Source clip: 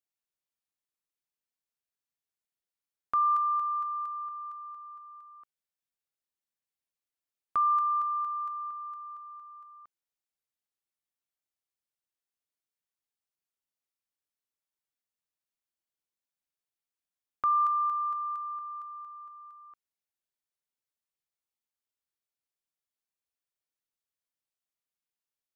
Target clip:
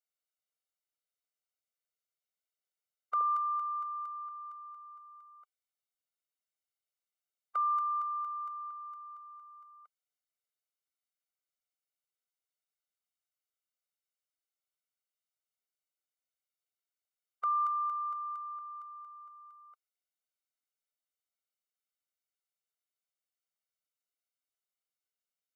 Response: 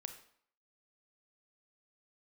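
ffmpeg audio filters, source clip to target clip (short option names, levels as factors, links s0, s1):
-af "asetnsamples=n=441:p=0,asendcmd='3.21 equalizer g -14.5',equalizer=f=110:w=0.45:g=-4.5,afftfilt=real='re*eq(mod(floor(b*sr/1024/390),2),1)':imag='im*eq(mod(floor(b*sr/1024/390),2),1)':win_size=1024:overlap=0.75"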